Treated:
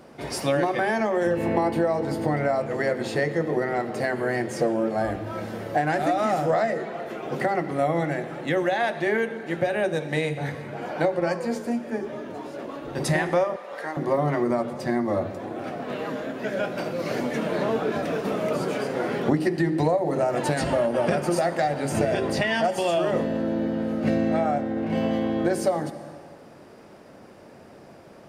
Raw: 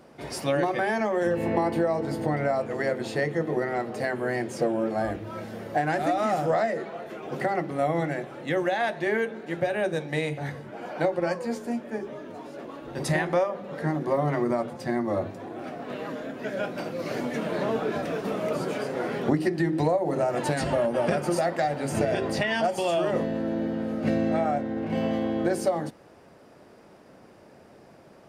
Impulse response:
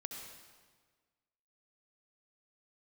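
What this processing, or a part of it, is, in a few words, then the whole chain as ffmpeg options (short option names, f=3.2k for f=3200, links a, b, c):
compressed reverb return: -filter_complex "[0:a]asplit=2[a][b];[1:a]atrim=start_sample=2205[c];[b][c]afir=irnorm=-1:irlink=0,acompressor=threshold=-32dB:ratio=6,volume=-0.5dB[d];[a][d]amix=inputs=2:normalize=0,asettb=1/sr,asplit=3[e][f][g];[e]atrim=end=13.564[h];[f]atrim=start=13.56:end=13.97,asetpts=PTS-STARTPTS,afade=t=in:d=0.004:c=qsin,afade=t=out:st=0.406:d=0.004:c=qsin,highpass=620[i];[g]atrim=start=13.966[j];[h][i]acrossfade=d=0.004:c1=hsin:c2=qsin[k];[k][j]acrossfade=d=0.004:c1=qsin:c2=hsin"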